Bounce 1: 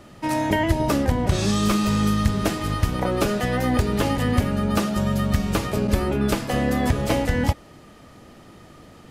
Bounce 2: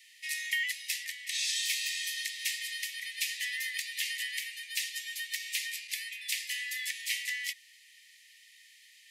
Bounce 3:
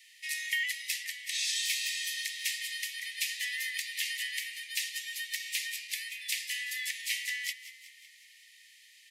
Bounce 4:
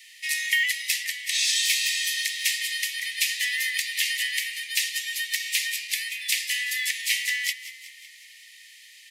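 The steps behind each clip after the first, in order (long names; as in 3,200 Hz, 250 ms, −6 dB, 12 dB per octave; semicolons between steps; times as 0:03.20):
Chebyshev high-pass filter 1,800 Hz, order 10
echo with shifted repeats 186 ms, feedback 57%, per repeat +36 Hz, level −15 dB
floating-point word with a short mantissa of 4 bits; level +8.5 dB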